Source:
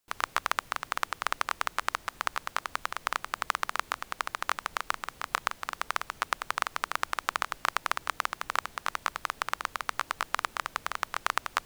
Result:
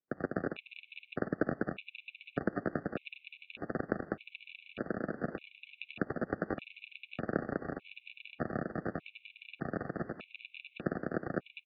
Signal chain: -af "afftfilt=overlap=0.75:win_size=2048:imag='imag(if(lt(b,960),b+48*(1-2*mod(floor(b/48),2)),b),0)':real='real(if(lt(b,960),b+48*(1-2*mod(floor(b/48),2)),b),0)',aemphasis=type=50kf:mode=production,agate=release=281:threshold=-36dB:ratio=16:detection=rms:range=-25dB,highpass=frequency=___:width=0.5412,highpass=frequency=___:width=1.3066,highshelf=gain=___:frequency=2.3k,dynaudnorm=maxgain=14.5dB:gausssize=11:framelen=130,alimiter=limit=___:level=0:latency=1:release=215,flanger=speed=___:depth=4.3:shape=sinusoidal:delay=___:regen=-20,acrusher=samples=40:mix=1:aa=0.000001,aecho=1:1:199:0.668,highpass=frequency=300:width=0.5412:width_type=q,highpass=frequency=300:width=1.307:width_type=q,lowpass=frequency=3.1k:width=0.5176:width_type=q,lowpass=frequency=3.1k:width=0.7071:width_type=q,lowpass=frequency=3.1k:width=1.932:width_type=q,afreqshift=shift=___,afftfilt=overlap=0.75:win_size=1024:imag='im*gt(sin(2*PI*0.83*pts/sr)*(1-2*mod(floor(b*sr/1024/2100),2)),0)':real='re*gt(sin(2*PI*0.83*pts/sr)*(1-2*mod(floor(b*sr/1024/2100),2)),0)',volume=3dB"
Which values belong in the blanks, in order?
230, 230, -5.5, -10dB, 1.6, 6.1, -130